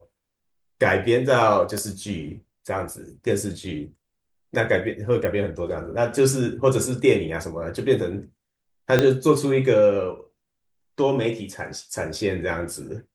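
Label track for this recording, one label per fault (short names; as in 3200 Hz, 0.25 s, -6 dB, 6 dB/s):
1.780000	1.780000	pop -16 dBFS
5.250000	5.250000	pop -14 dBFS
8.990000	8.990000	pop -5 dBFS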